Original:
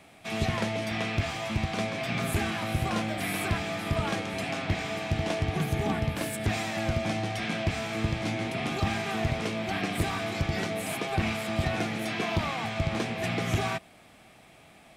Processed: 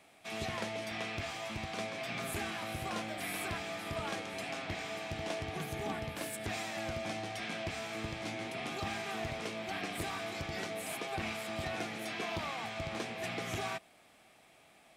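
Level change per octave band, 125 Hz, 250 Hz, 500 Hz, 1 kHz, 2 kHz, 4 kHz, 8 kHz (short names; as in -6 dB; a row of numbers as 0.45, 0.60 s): -14.5, -11.5, -7.5, -7.0, -7.0, -6.0, -5.0 dB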